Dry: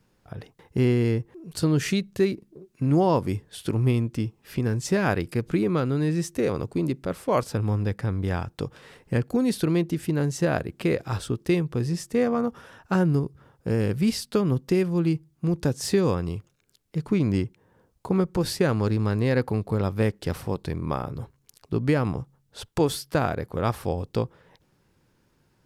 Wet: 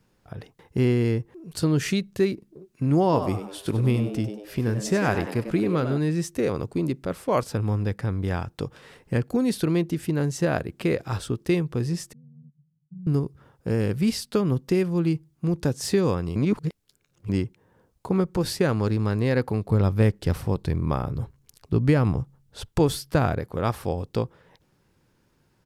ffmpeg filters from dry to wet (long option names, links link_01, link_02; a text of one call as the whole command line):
ffmpeg -i in.wav -filter_complex "[0:a]asplit=3[link_01][link_02][link_03];[link_01]afade=type=out:start_time=3.11:duration=0.02[link_04];[link_02]asplit=6[link_05][link_06][link_07][link_08][link_09][link_10];[link_06]adelay=97,afreqshift=99,volume=-10dB[link_11];[link_07]adelay=194,afreqshift=198,volume=-17.3dB[link_12];[link_08]adelay=291,afreqshift=297,volume=-24.7dB[link_13];[link_09]adelay=388,afreqshift=396,volume=-32dB[link_14];[link_10]adelay=485,afreqshift=495,volume=-39.3dB[link_15];[link_05][link_11][link_12][link_13][link_14][link_15]amix=inputs=6:normalize=0,afade=type=in:start_time=3.11:duration=0.02,afade=type=out:start_time=5.97:duration=0.02[link_16];[link_03]afade=type=in:start_time=5.97:duration=0.02[link_17];[link_04][link_16][link_17]amix=inputs=3:normalize=0,asettb=1/sr,asplit=3[link_18][link_19][link_20];[link_18]atrim=end=12.134[link_21];[link_19]atrim=start=12.13:end=13.07,asetpts=PTS-STARTPTS,afade=type=in:duration=0.004:curve=qsin,afade=type=out:start_time=0.936:duration=0.004:curve=qsin,asuperpass=centerf=150:order=4:qfactor=6.5[link_22];[link_20]atrim=start=13.066[link_23];[link_21][link_22]acrossfade=duration=0.004:curve1=hsin:curve2=qsin[link_24];[link_24][link_23]acrossfade=duration=0.004:curve1=qsin:curve2=hsin,asettb=1/sr,asplit=3[link_25][link_26][link_27];[link_25]atrim=end=19.694[link_28];[link_26]atrim=start=19.69:end=23.39,asetpts=PTS-STARTPTS,afade=type=in:duration=0.004:curve=qsin,afade=type=out:start_time=3.696:duration=0.004:curve=qsin,lowshelf=frequency=140:gain=9.5[link_29];[link_27]atrim=start=23.386[link_30];[link_28][link_29]acrossfade=duration=0.004:curve1=hsin:curve2=qsin[link_31];[link_31][link_30]acrossfade=duration=0.004:curve1=qsin:curve2=hsin,asplit=3[link_32][link_33][link_34];[link_32]atrim=end=16.362[link_35];[link_33]atrim=start=16.358:end=17.292,asetpts=PTS-STARTPTS,areverse[link_36];[link_34]atrim=start=17.288[link_37];[link_35][link_36]acrossfade=duration=0.004:curve1=hsin:curve2=hsin[link_38];[link_38][link_37]acrossfade=duration=0.004:curve1=hsin:curve2=hsin" out.wav